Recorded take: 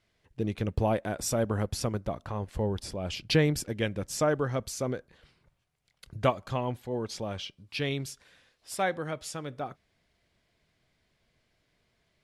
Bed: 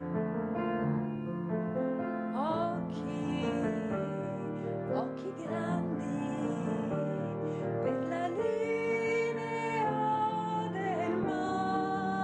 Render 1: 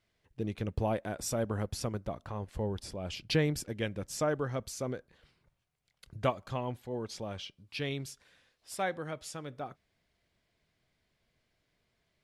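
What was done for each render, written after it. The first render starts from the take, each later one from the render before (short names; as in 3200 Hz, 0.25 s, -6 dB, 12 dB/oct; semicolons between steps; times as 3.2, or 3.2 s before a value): gain -4.5 dB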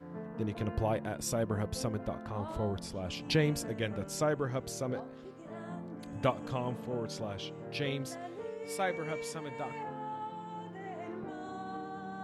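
add bed -10 dB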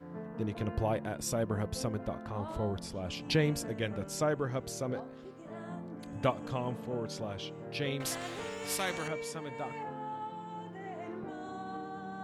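8–9.08 spectral compressor 2:1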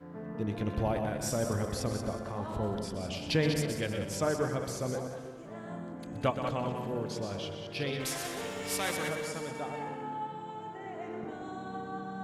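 reverse delay 0.118 s, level -7 dB; multi-head echo 62 ms, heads second and third, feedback 44%, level -10 dB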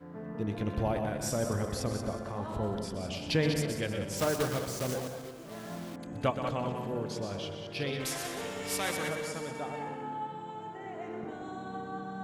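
4.17–5.98 block floating point 3-bit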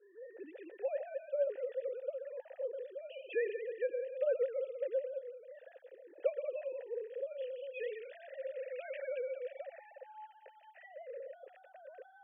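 sine-wave speech; vowel filter e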